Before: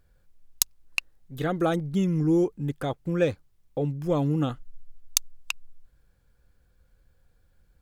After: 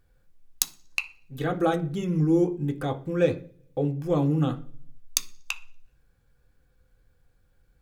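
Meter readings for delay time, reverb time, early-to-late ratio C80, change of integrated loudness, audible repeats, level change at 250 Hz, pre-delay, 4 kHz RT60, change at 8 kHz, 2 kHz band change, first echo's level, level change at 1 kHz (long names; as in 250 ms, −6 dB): no echo audible, 0.45 s, 20.5 dB, +0.5 dB, no echo audible, +0.5 dB, 3 ms, 0.50 s, −1.5 dB, +0.5 dB, no echo audible, +1.5 dB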